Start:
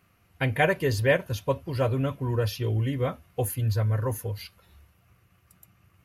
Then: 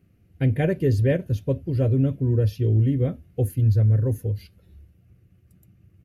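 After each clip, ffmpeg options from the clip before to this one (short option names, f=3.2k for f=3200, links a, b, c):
-af "firequalizer=gain_entry='entry(310,0);entry(1000,-25);entry(1600,-16)':delay=0.05:min_phase=1,volume=7dB"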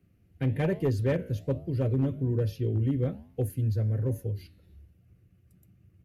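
-filter_complex "[0:a]acrossover=split=130|880[a][b][c];[a]alimiter=level_in=2.5dB:limit=-24dB:level=0:latency=1:release=35,volume=-2.5dB[d];[d][b][c]amix=inputs=3:normalize=0,flanger=delay=9.6:depth=8.6:regen=-86:speed=1.2:shape=sinusoidal,asoftclip=type=hard:threshold=-19.5dB"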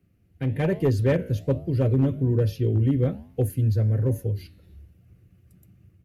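-af "dynaudnorm=f=420:g=3:m=5.5dB"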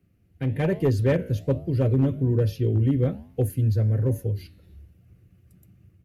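-af anull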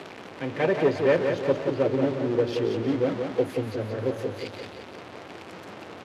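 -filter_complex "[0:a]aeval=exprs='val(0)+0.5*0.0251*sgn(val(0))':c=same,highpass=370,lowpass=3.8k,asplit=2[a][b];[b]aecho=0:1:178|356|534|712|890|1068:0.501|0.261|0.136|0.0705|0.0366|0.0191[c];[a][c]amix=inputs=2:normalize=0,volume=3.5dB"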